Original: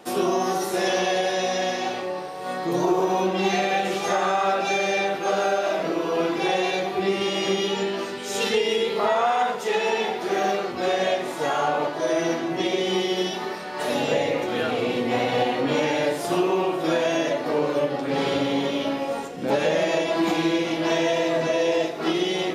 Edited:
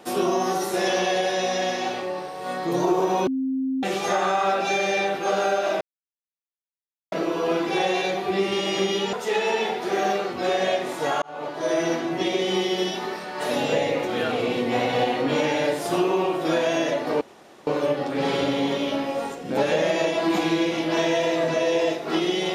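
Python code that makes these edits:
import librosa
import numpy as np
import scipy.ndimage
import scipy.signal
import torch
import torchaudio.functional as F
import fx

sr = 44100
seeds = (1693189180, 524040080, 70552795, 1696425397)

y = fx.edit(x, sr, fx.bleep(start_s=3.27, length_s=0.56, hz=264.0, db=-22.0),
    fx.insert_silence(at_s=5.81, length_s=1.31),
    fx.cut(start_s=7.82, length_s=1.7),
    fx.fade_in_span(start_s=11.61, length_s=0.48),
    fx.insert_room_tone(at_s=17.6, length_s=0.46), tone=tone)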